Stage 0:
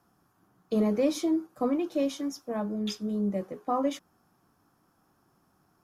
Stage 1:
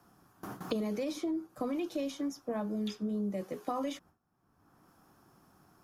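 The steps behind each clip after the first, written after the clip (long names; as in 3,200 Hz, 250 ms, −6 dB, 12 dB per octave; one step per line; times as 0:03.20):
brickwall limiter −22.5 dBFS, peak gain reduction 7.5 dB
noise gate with hold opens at −55 dBFS
multiband upward and downward compressor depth 100%
level −4.5 dB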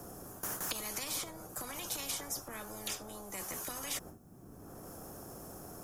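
flat-topped bell 2,000 Hz −13.5 dB 2.9 octaves
transient designer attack −3 dB, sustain +1 dB
every bin compressed towards the loudest bin 10 to 1
level +4.5 dB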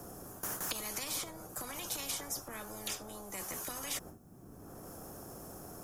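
no processing that can be heard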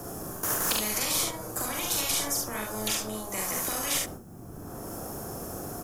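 ambience of single reflections 42 ms −3.5 dB, 70 ms −4 dB
on a send at −20 dB: convolution reverb, pre-delay 3 ms
on the sum: level +8 dB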